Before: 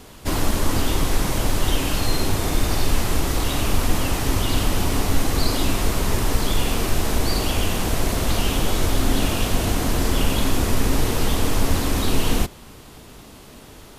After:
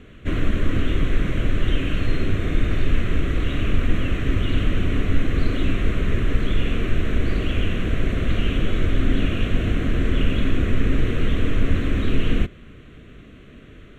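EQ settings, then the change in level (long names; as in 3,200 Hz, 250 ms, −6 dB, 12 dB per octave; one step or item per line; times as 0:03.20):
high-frequency loss of the air 180 metres
phaser with its sweep stopped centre 2,100 Hz, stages 4
+1.5 dB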